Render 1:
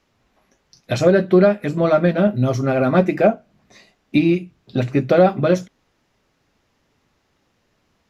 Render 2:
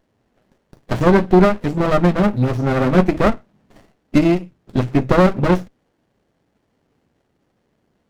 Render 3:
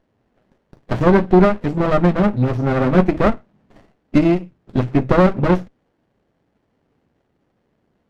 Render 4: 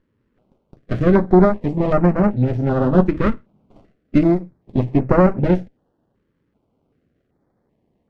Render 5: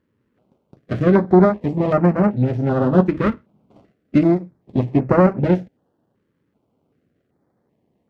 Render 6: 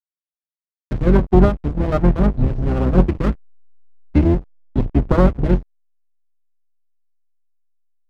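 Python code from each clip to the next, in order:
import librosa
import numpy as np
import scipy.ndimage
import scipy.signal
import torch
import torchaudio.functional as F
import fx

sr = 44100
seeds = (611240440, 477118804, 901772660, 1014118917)

y1 = fx.low_shelf(x, sr, hz=70.0, db=-11.5)
y1 = fx.running_max(y1, sr, window=33)
y1 = F.gain(torch.from_numpy(y1), 3.0).numpy()
y2 = fx.lowpass(y1, sr, hz=3100.0, slope=6)
y3 = fx.high_shelf(y2, sr, hz=3800.0, db=-11.0)
y3 = fx.filter_held_notch(y3, sr, hz=2.6, low_hz=720.0, high_hz=3500.0)
y4 = scipy.signal.sosfilt(scipy.signal.butter(2, 85.0, 'highpass', fs=sr, output='sos'), y3)
y5 = fx.octave_divider(y4, sr, octaves=2, level_db=3.0)
y5 = fx.backlash(y5, sr, play_db=-17.5)
y5 = F.gain(torch.from_numpy(y5), -2.0).numpy()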